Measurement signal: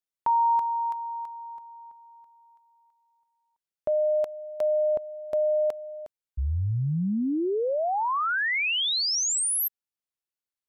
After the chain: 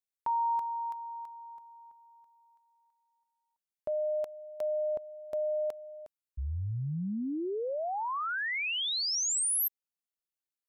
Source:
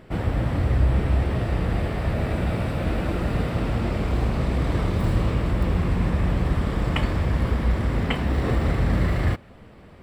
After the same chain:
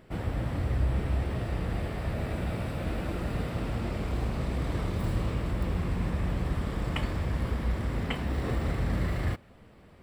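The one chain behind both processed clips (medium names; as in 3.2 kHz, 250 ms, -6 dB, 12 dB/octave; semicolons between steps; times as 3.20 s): treble shelf 5.9 kHz +5.5 dB; trim -7.5 dB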